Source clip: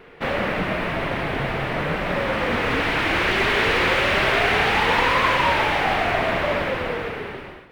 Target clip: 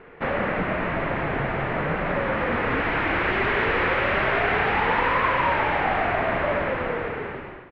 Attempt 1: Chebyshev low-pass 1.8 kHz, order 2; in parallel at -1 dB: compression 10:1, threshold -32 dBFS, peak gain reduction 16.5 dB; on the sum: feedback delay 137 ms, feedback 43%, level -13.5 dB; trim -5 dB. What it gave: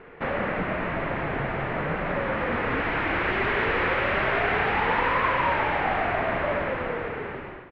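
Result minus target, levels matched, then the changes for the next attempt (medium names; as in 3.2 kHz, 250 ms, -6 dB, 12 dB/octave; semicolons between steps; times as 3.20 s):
compression: peak gain reduction +8.5 dB
change: compression 10:1, threshold -22.5 dBFS, peak gain reduction 8 dB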